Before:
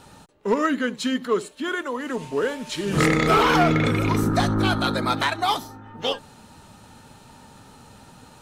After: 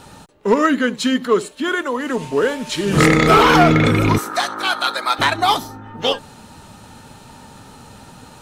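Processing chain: 4.18–5.19 s: high-pass 830 Hz 12 dB/octave; trim +6.5 dB

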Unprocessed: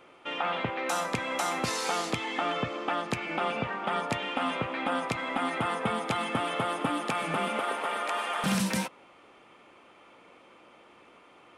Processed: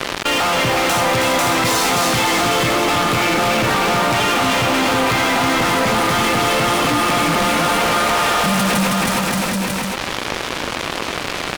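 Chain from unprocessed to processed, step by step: high-pass 100 Hz 12 dB/octave; bass shelf 170 Hz +8.5 dB; fuzz box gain 44 dB, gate -50 dBFS; bouncing-ball echo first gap 320 ms, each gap 0.8×, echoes 5; level flattener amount 70%; trim -6 dB

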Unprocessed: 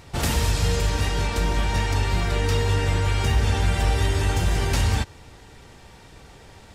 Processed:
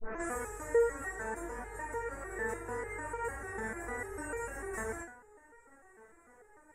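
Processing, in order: tape start-up on the opening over 0.36 s; FFT filter 200 Hz 0 dB, 480 Hz +12 dB, 760 Hz +7 dB, 1.8 kHz +13 dB, 3.1 kHz -22 dB, 4.5 kHz -27 dB, 7.8 kHz +9 dB, 11 kHz +2 dB; vibrato 0.88 Hz 5.1 cents; de-hum 54.36 Hz, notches 34; resonator arpeggio 6.7 Hz 220–470 Hz; trim -3.5 dB

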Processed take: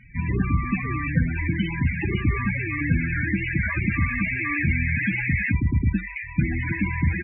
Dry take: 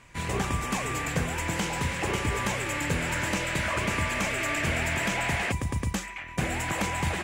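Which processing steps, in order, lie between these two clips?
resampled via 11.025 kHz; high-order bell 670 Hz -9 dB; loudest bins only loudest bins 16; trim +8.5 dB

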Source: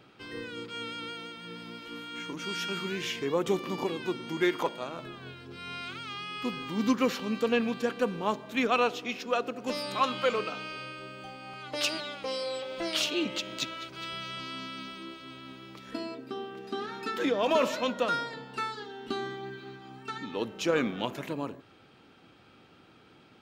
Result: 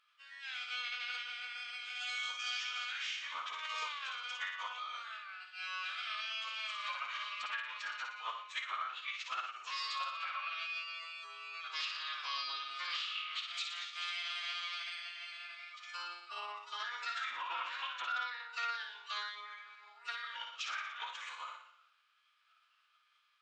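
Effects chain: spectral noise reduction 13 dB; low-pass that closes with the level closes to 2.9 kHz, closed at -23.5 dBFS; elliptic high-pass 1.1 kHz, stop band 80 dB; compression 6:1, threshold -38 dBFS, peak gain reduction 14 dB; on a send: flutter echo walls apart 10.1 m, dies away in 0.72 s; on the sum: formant-preserving pitch shift -11 st; trim +2 dB

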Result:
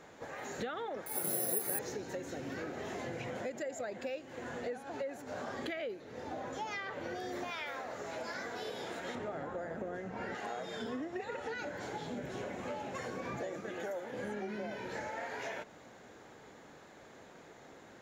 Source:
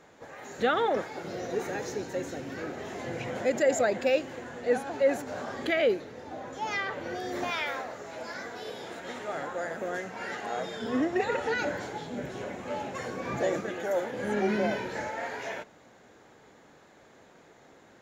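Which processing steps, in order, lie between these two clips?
9.15–10.35 s: tilt EQ -3 dB/octave; compression 10:1, threshold -38 dBFS, peak gain reduction 19 dB; 1.06–1.79 s: careless resampling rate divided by 4×, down none, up zero stuff; trim +1 dB

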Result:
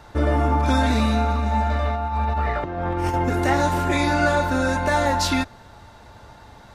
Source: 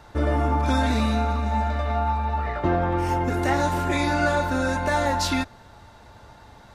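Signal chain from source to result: 1.71–3.14 s: compressor with a negative ratio -25 dBFS, ratio -0.5; trim +2.5 dB

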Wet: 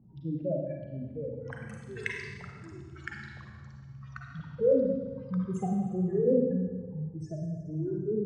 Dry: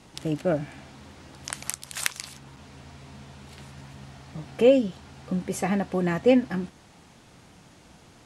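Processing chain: spectral contrast enhancement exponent 3.5; level-controlled noise filter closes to 870 Hz, open at -21.5 dBFS; peaking EQ 140 Hz +6 dB 0.36 oct; Schroeder reverb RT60 1.3 s, combs from 33 ms, DRR 0 dB; ever faster or slower copies 623 ms, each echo -3 st, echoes 3, each echo -6 dB; trim -7.5 dB

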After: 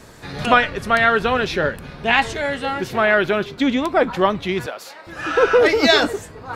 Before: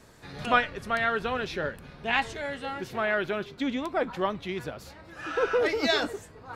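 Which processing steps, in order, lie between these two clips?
4.66–5.07 s: high-pass 550 Hz 12 dB/octave; loudness maximiser +12 dB; trim -1 dB

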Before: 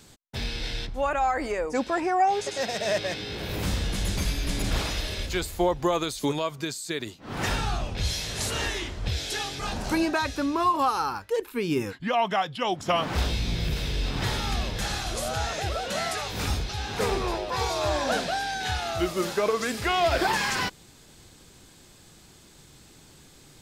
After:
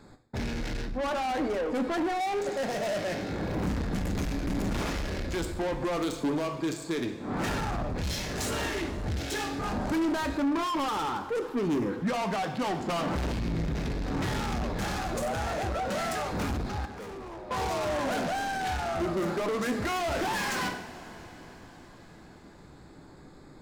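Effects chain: local Wiener filter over 15 samples; in parallel at -2.5 dB: peak limiter -21 dBFS, peak gain reduction 8 dB; on the sum: bass shelf 350 Hz -4.5 dB; overload inside the chain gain 23 dB; on a send at -6 dB: reverberation, pre-delay 3 ms; on the sum: saturation -28.5 dBFS, distortion -10 dB; 16.85–17.51 s: compression 6:1, threshold -43 dBFS, peak gain reduction 11.5 dB; dynamic bell 220 Hz, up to +6 dB, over -55 dBFS, Q 0.79

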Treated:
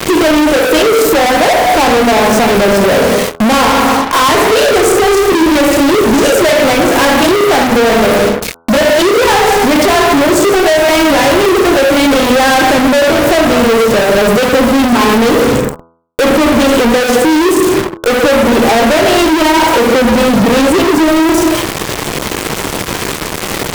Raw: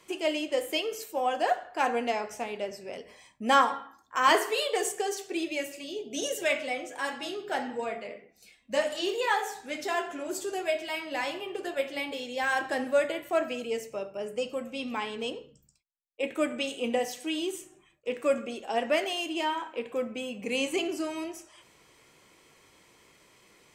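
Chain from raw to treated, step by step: tilt shelf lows +7.5 dB; bit crusher 9-bit; bass shelf 320 Hz +2.5 dB; on a send at -6 dB: reverberation RT60 0.70 s, pre-delay 17 ms; on the sum: compression, threshold -32 dBFS, peak gain reduction 16.5 dB; fuzz box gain 53 dB, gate -57 dBFS; de-hum 83.25 Hz, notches 18; trim +6 dB

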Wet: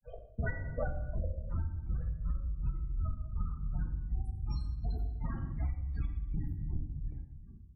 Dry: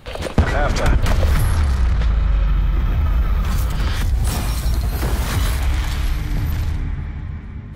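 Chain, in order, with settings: granulator 100 ms, grains 20 per s, spray 10 ms, pitch spread up and down by 0 st; loudest bins only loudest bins 16; gate -23 dBFS, range -15 dB; dynamic bell 700 Hz, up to +4 dB, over -44 dBFS, Q 3.3; granulator 218 ms, grains 2.7 per s, spray 15 ms, pitch spread up and down by 0 st; simulated room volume 180 m³, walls mixed, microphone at 0.66 m; compression 10:1, threshold -29 dBFS, peak gain reduction 16 dB; trim -1.5 dB

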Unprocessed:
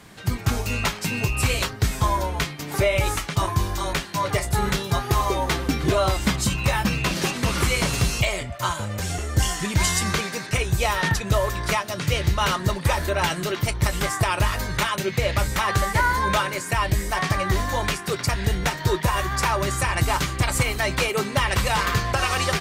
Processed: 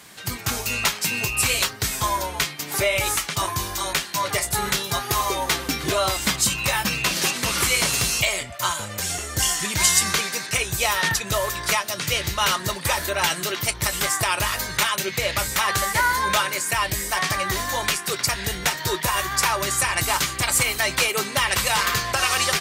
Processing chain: tilt EQ +2.5 dB/octave

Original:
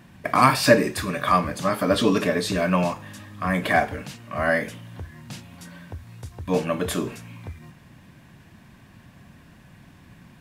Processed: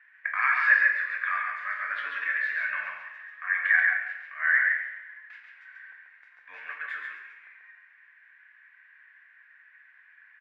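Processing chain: Butterworth band-pass 1.8 kHz, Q 3.1; delay 138 ms -4 dB; plate-style reverb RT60 1 s, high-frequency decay 1×, DRR 3 dB; trim +3.5 dB

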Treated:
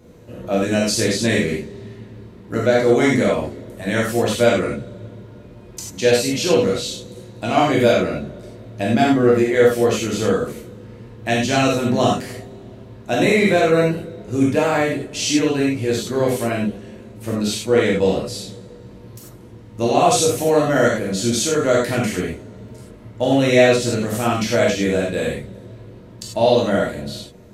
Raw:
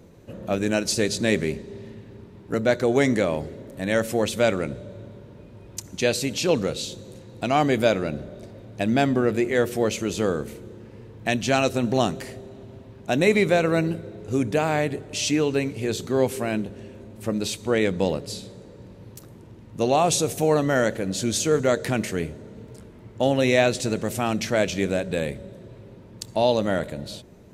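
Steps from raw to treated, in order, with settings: gated-style reverb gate 120 ms flat, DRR -5 dB; trim -1 dB

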